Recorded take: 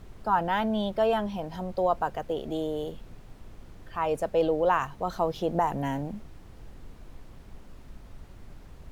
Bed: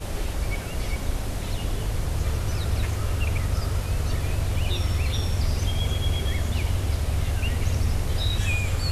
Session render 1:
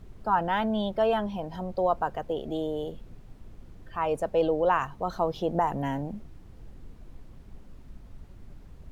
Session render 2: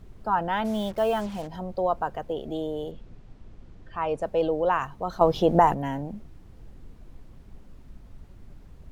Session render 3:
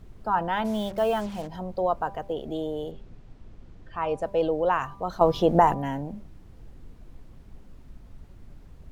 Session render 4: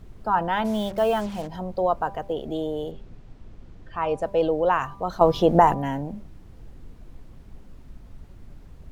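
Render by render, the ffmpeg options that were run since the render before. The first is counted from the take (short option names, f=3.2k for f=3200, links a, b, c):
-af "afftdn=nr=6:nf=-49"
-filter_complex "[0:a]asplit=3[a][b][c];[a]afade=t=out:st=0.64:d=0.02[d];[b]acrusher=bits=6:mix=0:aa=0.5,afade=t=in:st=0.64:d=0.02,afade=t=out:st=1.46:d=0.02[e];[c]afade=t=in:st=1.46:d=0.02[f];[d][e][f]amix=inputs=3:normalize=0,asettb=1/sr,asplit=3[g][h][i];[g]atrim=end=2.914[j];[h]atrim=start=2.91:end=4.22,asetpts=PTS-STARTPTS,afade=t=in:d=0.004:c=qsin,afade=t=out:st=1.306:d=0.004:c=qsin,lowpass=6.3k[k];[i]atrim=start=4.216[l];[j][k]acrossfade=d=0.004:c1=hsin:c2=qsin[m];[m][l]acrossfade=d=0.004:c1=qsin:c2=hsin,asplit=3[n][o][p];[n]atrim=end=5.212[q];[o]atrim=start=5.208:end=5.742,asetpts=PTS-STARTPTS,volume=7.5dB[r];[p]atrim=start=5.738[s];[q][r]acrossfade=d=0.004:c1=hsin:c2=hsin[t];[t][s]acrossfade=d=0.004:c1=hsin:c2=hsin"
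-af "bandreject=f=197.1:t=h:w=4,bandreject=f=394.2:t=h:w=4,bandreject=f=591.3:t=h:w=4,bandreject=f=788.4:t=h:w=4,bandreject=f=985.5:t=h:w=4,bandreject=f=1.1826k:t=h:w=4"
-af "volume=2.5dB"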